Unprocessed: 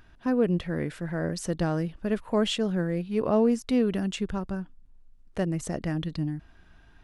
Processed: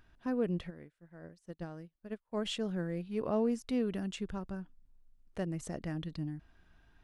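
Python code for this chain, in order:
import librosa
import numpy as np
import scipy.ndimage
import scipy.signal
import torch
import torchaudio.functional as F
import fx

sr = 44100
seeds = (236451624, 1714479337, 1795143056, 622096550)

y = fx.upward_expand(x, sr, threshold_db=-40.0, expansion=2.5, at=(0.69, 2.44), fade=0.02)
y = y * 10.0 ** (-8.5 / 20.0)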